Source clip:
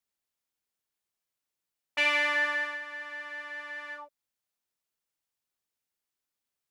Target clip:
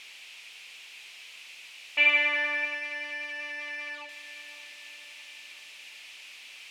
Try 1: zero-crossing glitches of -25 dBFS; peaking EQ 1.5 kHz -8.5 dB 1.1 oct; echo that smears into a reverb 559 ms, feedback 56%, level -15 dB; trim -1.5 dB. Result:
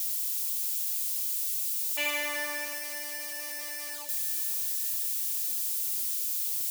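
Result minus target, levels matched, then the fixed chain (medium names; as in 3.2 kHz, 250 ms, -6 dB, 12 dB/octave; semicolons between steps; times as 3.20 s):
2 kHz band -7.0 dB
zero-crossing glitches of -25 dBFS; resonant low-pass 2.5 kHz, resonance Q 3.9; peaking EQ 1.5 kHz -8.5 dB 1.1 oct; echo that smears into a reverb 559 ms, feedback 56%, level -15 dB; trim -1.5 dB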